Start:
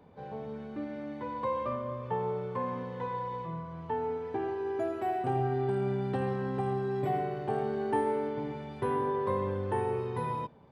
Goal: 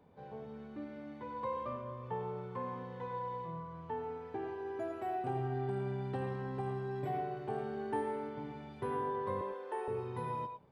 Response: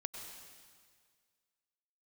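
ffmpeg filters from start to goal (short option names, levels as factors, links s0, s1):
-filter_complex "[0:a]asettb=1/sr,asplit=3[s0][s1][s2];[s0]atrim=end=9.414[s3];[s1]atrim=start=9.41:end=9.88,asetpts=PTS-STARTPTS,afade=t=in:d=0.004:c=qsin,afade=t=out:st=0.466:d=0.004:c=qsin,highpass=f=380:w=0.5412,highpass=f=380:w=1.3066[s4];[s2]atrim=start=9.876[s5];[s3][s4]acrossfade=d=0.004:c1=hsin:c2=qsin[s6];[s6][s5]acrossfade=d=0.004:c1=qsin:c2=hsin[s7];[1:a]atrim=start_sample=2205,afade=t=out:st=0.17:d=0.01,atrim=end_sample=7938[s8];[s7][s8]afir=irnorm=-1:irlink=0,volume=0.668"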